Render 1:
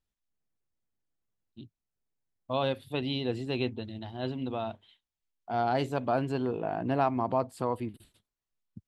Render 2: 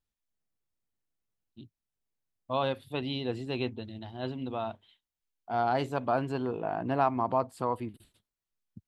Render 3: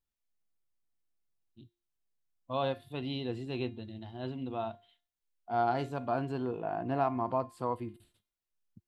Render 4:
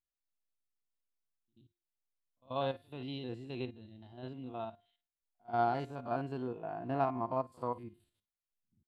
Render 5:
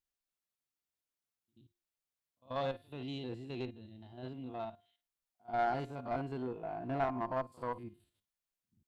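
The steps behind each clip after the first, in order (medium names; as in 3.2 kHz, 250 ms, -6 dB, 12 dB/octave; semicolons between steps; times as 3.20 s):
dynamic bell 1.1 kHz, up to +5 dB, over -41 dBFS, Q 1.2; trim -2 dB
harmonic-percussive split harmonic +6 dB; feedback comb 350 Hz, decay 0.41 s, harmonics all, mix 60%
spectrogram pixelated in time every 50 ms; pre-echo 84 ms -22 dB; upward expansion 1.5:1, over -44 dBFS
single-diode clipper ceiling -29.5 dBFS; trim +1 dB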